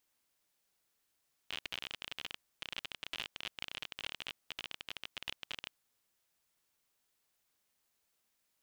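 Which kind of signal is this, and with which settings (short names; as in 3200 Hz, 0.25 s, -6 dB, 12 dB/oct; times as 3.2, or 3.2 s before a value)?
random clicks 33/s -23.5 dBFS 4.20 s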